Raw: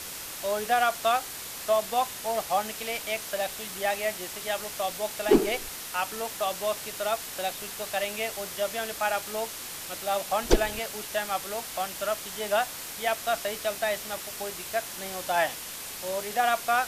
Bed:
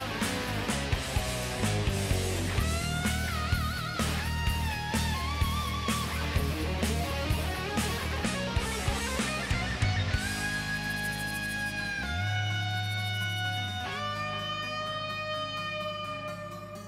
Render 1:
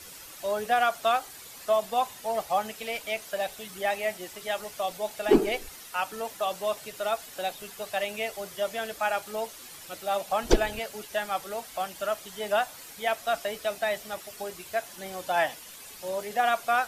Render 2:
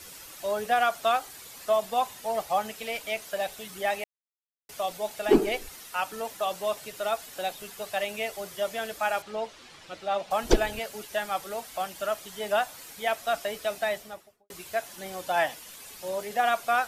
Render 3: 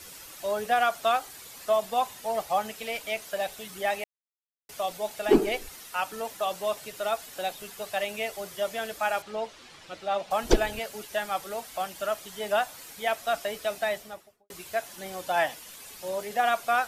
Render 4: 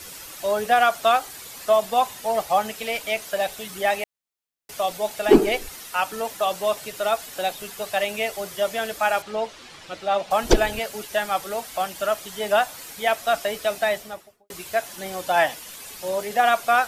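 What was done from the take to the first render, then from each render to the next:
denoiser 10 dB, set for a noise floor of -39 dBFS
4.04–4.69 mute; 9.22–10.31 LPF 4400 Hz; 13.84–14.5 studio fade out
nothing audible
gain +6 dB; limiter -1 dBFS, peak gain reduction 3 dB

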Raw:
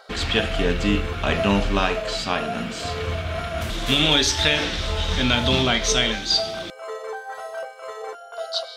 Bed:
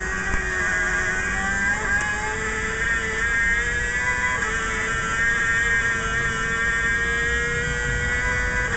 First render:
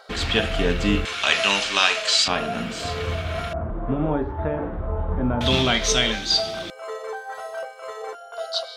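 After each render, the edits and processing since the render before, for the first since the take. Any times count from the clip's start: 1.05–2.28 weighting filter ITU-R 468; 3.53–5.41 LPF 1100 Hz 24 dB/oct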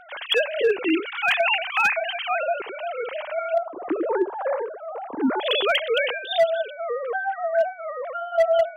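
sine-wave speech; hard clip -13 dBFS, distortion -19 dB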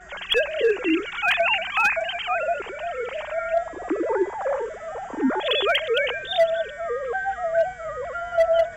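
add bed -21 dB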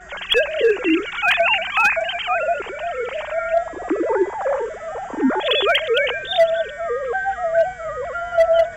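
gain +4 dB

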